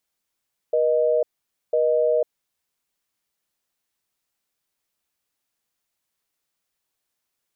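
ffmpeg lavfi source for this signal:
-f lavfi -i "aevalsrc='0.106*(sin(2*PI*480*t)+sin(2*PI*620*t))*clip(min(mod(t,1),0.5-mod(t,1))/0.005,0,1)':d=1.72:s=44100"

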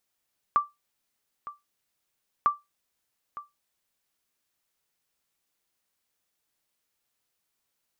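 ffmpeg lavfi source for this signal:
-f lavfi -i "aevalsrc='0.211*(sin(2*PI*1170*mod(t,1.9))*exp(-6.91*mod(t,1.9)/0.19)+0.15*sin(2*PI*1170*max(mod(t,1.9)-0.91,0))*exp(-6.91*max(mod(t,1.9)-0.91,0)/0.19))':d=3.8:s=44100"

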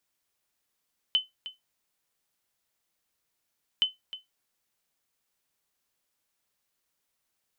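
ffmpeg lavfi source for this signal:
-f lavfi -i "aevalsrc='0.168*(sin(2*PI*3040*mod(t,2.67))*exp(-6.91*mod(t,2.67)/0.17)+0.178*sin(2*PI*3040*max(mod(t,2.67)-0.31,0))*exp(-6.91*max(mod(t,2.67)-0.31,0)/0.17))':d=5.34:s=44100"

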